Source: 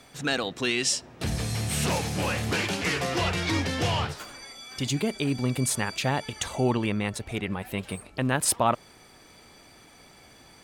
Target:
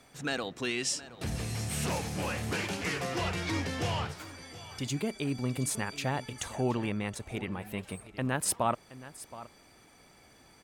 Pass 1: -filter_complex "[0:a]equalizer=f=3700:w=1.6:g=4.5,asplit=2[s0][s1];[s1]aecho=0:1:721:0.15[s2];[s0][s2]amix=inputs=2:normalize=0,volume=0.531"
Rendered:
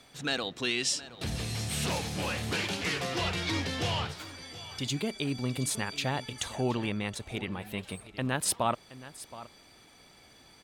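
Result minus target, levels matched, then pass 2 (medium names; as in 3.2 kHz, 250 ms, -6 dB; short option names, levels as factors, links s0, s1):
4 kHz band +4.0 dB
-filter_complex "[0:a]equalizer=f=3700:w=1.6:g=-3,asplit=2[s0][s1];[s1]aecho=0:1:721:0.15[s2];[s0][s2]amix=inputs=2:normalize=0,volume=0.531"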